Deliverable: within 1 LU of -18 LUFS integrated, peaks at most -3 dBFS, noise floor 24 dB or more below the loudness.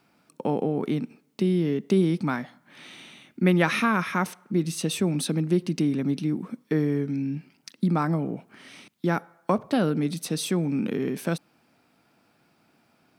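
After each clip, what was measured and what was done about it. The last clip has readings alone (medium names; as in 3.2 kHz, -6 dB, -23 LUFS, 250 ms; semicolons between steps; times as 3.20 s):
loudness -26.5 LUFS; peak level -7.5 dBFS; loudness target -18.0 LUFS
-> trim +8.5 dB; peak limiter -3 dBFS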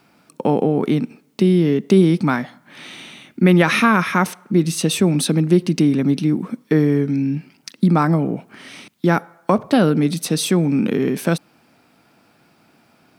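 loudness -18.0 LUFS; peak level -3.0 dBFS; noise floor -57 dBFS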